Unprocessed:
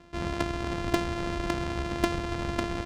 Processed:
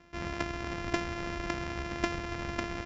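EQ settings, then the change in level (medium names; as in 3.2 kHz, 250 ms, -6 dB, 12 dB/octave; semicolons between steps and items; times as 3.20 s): rippled Chebyshev low-pass 7.5 kHz, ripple 6 dB; 0.0 dB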